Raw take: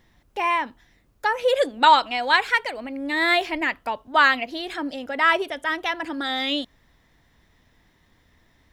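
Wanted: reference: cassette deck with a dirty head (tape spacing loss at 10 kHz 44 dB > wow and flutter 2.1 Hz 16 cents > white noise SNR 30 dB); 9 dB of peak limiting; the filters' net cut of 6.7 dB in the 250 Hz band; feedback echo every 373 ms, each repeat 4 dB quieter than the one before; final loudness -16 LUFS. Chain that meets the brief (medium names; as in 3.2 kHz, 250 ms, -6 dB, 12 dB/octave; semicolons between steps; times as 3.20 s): peaking EQ 250 Hz -7 dB; peak limiter -13 dBFS; tape spacing loss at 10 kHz 44 dB; feedback delay 373 ms, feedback 63%, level -4 dB; wow and flutter 2.1 Hz 16 cents; white noise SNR 30 dB; trim +13.5 dB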